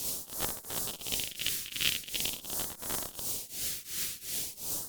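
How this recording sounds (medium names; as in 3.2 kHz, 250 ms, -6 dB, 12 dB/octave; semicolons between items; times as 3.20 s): a quantiser's noise floor 6-bit, dither triangular; tremolo triangle 2.8 Hz, depth 95%; phasing stages 2, 0.44 Hz, lowest notch 800–2600 Hz; Opus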